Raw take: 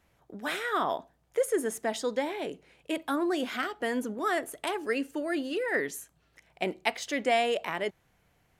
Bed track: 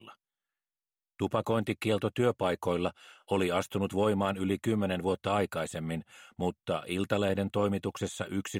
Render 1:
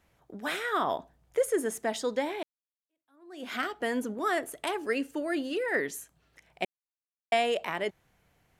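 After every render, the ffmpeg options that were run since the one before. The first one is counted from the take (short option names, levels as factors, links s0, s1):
-filter_complex "[0:a]asettb=1/sr,asplit=3[s0][s1][s2];[s0]atrim=end=0.874[s3];[s1]atrim=start=0.87:end=1.5,asetpts=PTS-STARTPTS,afade=t=in:d=0.004:c=qsin,afade=t=out:st=0.626:d=0.004:c=qsin,lowshelf=f=130:g=8[s4];[s2]atrim=start=1.496[s5];[s3][s4]acrossfade=d=0.004:c1=hsin:c2=qsin[s6];[s6][s5]acrossfade=d=0.004:c1=qsin:c2=hsin,asplit=4[s7][s8][s9][s10];[s7]atrim=end=2.43,asetpts=PTS-STARTPTS,afade=t=out:st=2.426:d=0.004:c=hsin[s11];[s8]atrim=start=2.43:end=6.65,asetpts=PTS-STARTPTS,afade=t=in:d=1.09:c=exp,afade=t=out:st=4.216:d=0.004:c=hsin[s12];[s9]atrim=start=6.65:end=7.32,asetpts=PTS-STARTPTS,volume=0[s13];[s10]atrim=start=7.32,asetpts=PTS-STARTPTS,afade=t=in:d=0.004:c=hsin[s14];[s11][s12][s13][s14]concat=n=4:v=0:a=1"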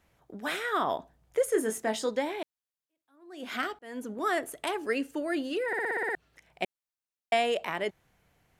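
-filter_complex "[0:a]asettb=1/sr,asplit=3[s0][s1][s2];[s0]atrim=end=1.504[s3];[s1]atrim=start=1.5:end=2.09,asetpts=PTS-STARTPTS,afade=t=in:d=0.004:c=qsin,afade=t=out:st=0.586:d=0.004:c=qsin,asplit=2[s4][s5];[s5]adelay=23,volume=0.531[s6];[s4][s6]amix=inputs=2:normalize=0,atrim=end_sample=26019[s7];[s2]atrim=start=2.086[s8];[s3][s7]acrossfade=d=0.004:c1=hsin:c2=qsin[s9];[s9][s8]acrossfade=d=0.004:c1=qsin:c2=hsin,asplit=10[s10][s11][s12][s13][s14][s15][s16][s17][s18][s19];[s10]atrim=end=3.79,asetpts=PTS-STARTPTS,afade=t=out:st=3.786:d=0.004:c=hsin[s20];[s11]atrim=start=3.79:end=5.732,asetpts=PTS-STARTPTS,afade=t=in:d=0.43[s21];[s12]atrim=start=5.668:end=5.732[s22];[s13]atrim=start=5.668:end=5.732[s23];[s14]atrim=start=5.668:end=5.732[s24];[s15]atrim=start=5.668:end=5.732[s25];[s16]atrim=start=5.668:end=5.732[s26];[s17]atrim=start=5.668:end=5.732[s27];[s18]atrim=start=5.668:end=5.732[s28];[s19]atrim=start=6.148[s29];[s20][s21]concat=n=2:v=0:a=1[s30];[s30][s22]acrossfade=d=0.004:c1=hsin:c2=hsin[s31];[s31][s23]acrossfade=d=0.004:c1=hsin:c2=hsin[s32];[s32][s24]acrossfade=d=0.004:c1=hsin:c2=hsin[s33];[s33][s25]acrossfade=d=0.004:c1=hsin:c2=hsin[s34];[s34][s26]acrossfade=d=0.004:c1=hsin:c2=hsin[s35];[s35][s27]acrossfade=d=0.004:c1=hsin:c2=hsin[s36];[s36][s28]acrossfade=d=0.004:c1=hsin:c2=hsin[s37];[s37][s29]acrossfade=d=0.004:c1=hsin:c2=hsin"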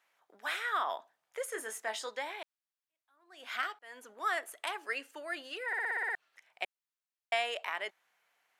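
-af "highpass=1000,highshelf=f=4000:g=-6"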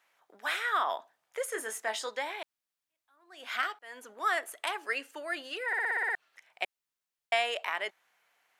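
-af "volume=1.5"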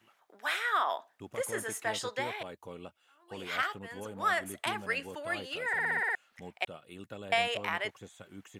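-filter_complex "[1:a]volume=0.168[s0];[0:a][s0]amix=inputs=2:normalize=0"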